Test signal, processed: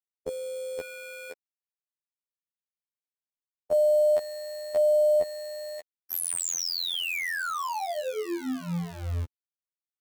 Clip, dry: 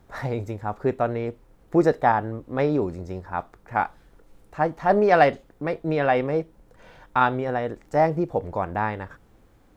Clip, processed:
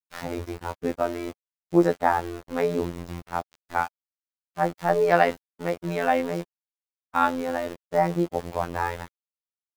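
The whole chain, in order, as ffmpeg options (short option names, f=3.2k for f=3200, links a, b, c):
-af "aeval=exprs='val(0)*gte(abs(val(0)),0.0224)':c=same,afftfilt=real='hypot(re,im)*cos(PI*b)':imag='0':win_size=2048:overlap=0.75,volume=1.5dB"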